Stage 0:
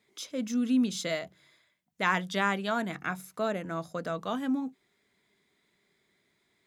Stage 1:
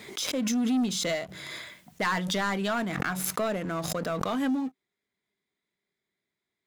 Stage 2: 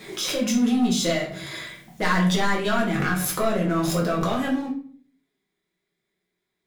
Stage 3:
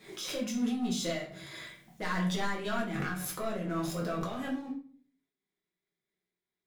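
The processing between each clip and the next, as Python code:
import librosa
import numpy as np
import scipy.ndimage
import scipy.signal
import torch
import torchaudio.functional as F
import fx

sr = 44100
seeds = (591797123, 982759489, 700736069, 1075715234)

y1 = fx.leveller(x, sr, passes=3)
y1 = fx.pre_swell(y1, sr, db_per_s=24.0)
y1 = F.gain(torch.from_numpy(y1), -8.0).numpy()
y2 = fx.room_shoebox(y1, sr, seeds[0], volume_m3=44.0, walls='mixed', distance_m=0.98)
y3 = fx.am_noise(y2, sr, seeds[1], hz=5.7, depth_pct=55)
y3 = F.gain(torch.from_numpy(y3), -8.5).numpy()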